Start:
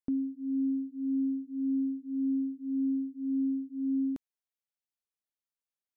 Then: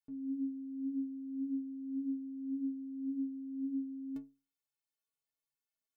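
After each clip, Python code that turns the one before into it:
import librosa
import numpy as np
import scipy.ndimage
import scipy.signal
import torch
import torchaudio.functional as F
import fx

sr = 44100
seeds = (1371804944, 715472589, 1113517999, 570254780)

y = fx.over_compress(x, sr, threshold_db=-38.0, ratio=-1.0)
y = fx.stiff_resonator(y, sr, f0_hz=130.0, decay_s=0.35, stiffness=0.03)
y = F.gain(torch.from_numpy(y), 4.0).numpy()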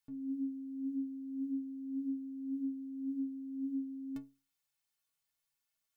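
y = fx.peak_eq(x, sr, hz=370.0, db=-9.5, octaves=1.7)
y = F.gain(torch.from_numpy(y), 7.0).numpy()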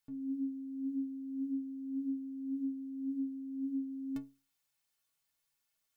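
y = fx.rider(x, sr, range_db=10, speed_s=0.5)
y = F.gain(torch.from_numpy(y), 1.0).numpy()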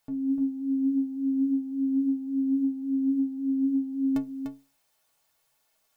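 y = fx.peak_eq(x, sr, hz=670.0, db=9.5, octaves=1.3)
y = y + 10.0 ** (-6.5 / 20.0) * np.pad(y, (int(297 * sr / 1000.0), 0))[:len(y)]
y = F.gain(torch.from_numpy(y), 9.0).numpy()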